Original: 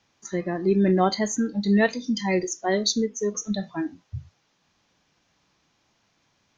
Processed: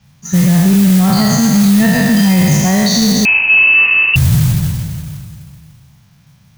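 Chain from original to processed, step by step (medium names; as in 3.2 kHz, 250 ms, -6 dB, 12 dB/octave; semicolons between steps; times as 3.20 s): spectral sustain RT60 2.47 s; resonant low shelf 230 Hz +13.5 dB, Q 3; modulation noise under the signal 15 dB; 3.25–4.16 s: frequency inversion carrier 2.8 kHz; loudness maximiser +9 dB; trim -2 dB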